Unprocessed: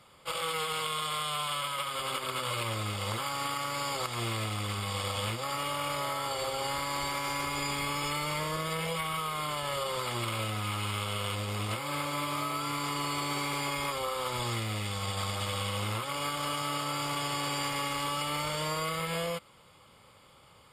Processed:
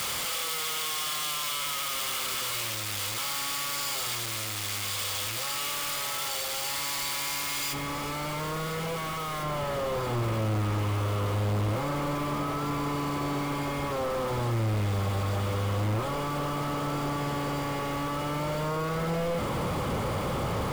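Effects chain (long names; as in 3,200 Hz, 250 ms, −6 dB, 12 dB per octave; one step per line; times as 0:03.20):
sign of each sample alone
tilt shelving filter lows −5.5 dB, about 1,500 Hz, from 0:07.72 lows +5 dB, from 0:09.42 lows +9.5 dB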